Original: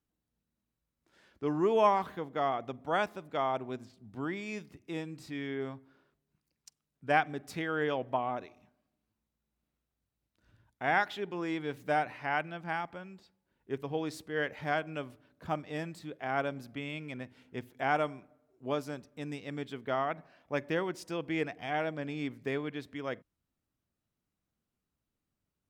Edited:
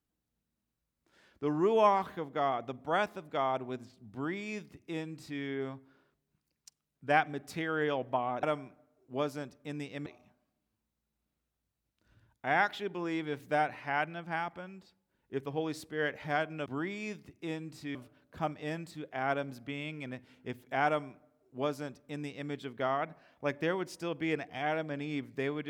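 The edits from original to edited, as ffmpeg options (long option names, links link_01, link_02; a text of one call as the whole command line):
ffmpeg -i in.wav -filter_complex "[0:a]asplit=5[link_01][link_02][link_03][link_04][link_05];[link_01]atrim=end=8.432[link_06];[link_02]atrim=start=17.948:end=19.582[link_07];[link_03]atrim=start=8.428:end=15.032[link_08];[link_04]atrim=start=4.118:end=5.412[link_09];[link_05]atrim=start=15.028[link_10];[link_06][link_07]acrossfade=duration=0.004:curve1=hsin:curve2=hsin[link_11];[link_11][link_08]acrossfade=duration=0.004:curve1=hsin:curve2=hsin[link_12];[link_12][link_09]acrossfade=duration=0.004:curve1=hsin:curve2=hsin[link_13];[link_13][link_10]acrossfade=duration=0.004:curve1=hsin:curve2=hsin" out.wav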